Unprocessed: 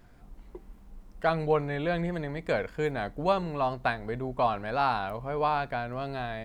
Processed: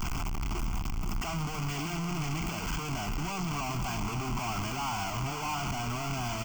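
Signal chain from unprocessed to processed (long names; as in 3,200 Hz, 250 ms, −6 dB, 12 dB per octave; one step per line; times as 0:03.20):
sign of each sample alone
phaser with its sweep stopped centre 2,600 Hz, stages 8
on a send: single-tap delay 509 ms −9.5 dB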